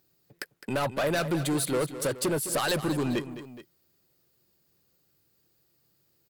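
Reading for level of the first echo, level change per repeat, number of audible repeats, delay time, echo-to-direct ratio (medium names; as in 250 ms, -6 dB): -12.5 dB, -4.5 dB, 2, 210 ms, -11.0 dB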